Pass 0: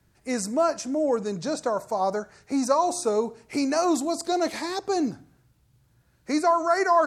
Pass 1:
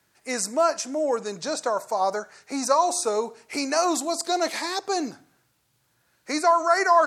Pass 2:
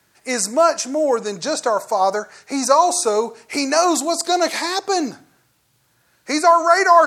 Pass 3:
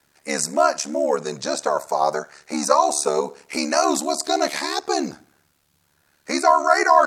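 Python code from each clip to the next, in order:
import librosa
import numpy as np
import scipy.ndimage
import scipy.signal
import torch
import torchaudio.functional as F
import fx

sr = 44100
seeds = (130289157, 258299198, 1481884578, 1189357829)

y1 = fx.highpass(x, sr, hz=810.0, slope=6)
y1 = y1 * librosa.db_to_amplitude(5.0)
y2 = fx.quant_float(y1, sr, bits=6)
y2 = y2 * librosa.db_to_amplitude(6.5)
y3 = y2 * np.sin(2.0 * np.pi * 36.0 * np.arange(len(y2)) / sr)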